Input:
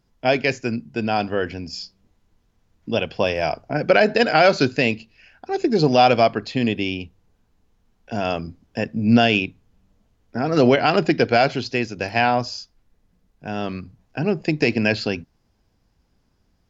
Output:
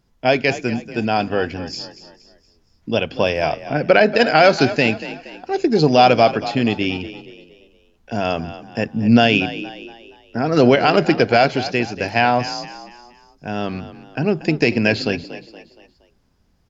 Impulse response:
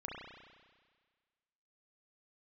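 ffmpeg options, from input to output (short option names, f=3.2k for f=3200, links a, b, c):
-filter_complex "[0:a]asettb=1/sr,asplit=3[a][b][c];[a]atrim=end=3.454[d];[b]atrim=start=3.45:end=4.16,asetpts=PTS-STARTPTS,afade=t=in:d=0.004:c=qsin,afade=t=out:st=0.706:d=0.004:c=qsin,lowpass=4.9k[e];[c]atrim=start=4.156[f];[d][e]acrossfade=d=0.004:c1=hsin:c2=qsin[g];[g][f]acrossfade=d=0.004:c1=qsin:c2=hsin,asplit=2[h][i];[i]asplit=4[j][k][l][m];[j]adelay=235,afreqshift=38,volume=-14dB[n];[k]adelay=470,afreqshift=76,volume=-21.3dB[o];[l]adelay=705,afreqshift=114,volume=-28.7dB[p];[m]adelay=940,afreqshift=152,volume=-36dB[q];[n][o][p][q]amix=inputs=4:normalize=0[r];[h][r]amix=inputs=2:normalize=0,volume=2.5dB"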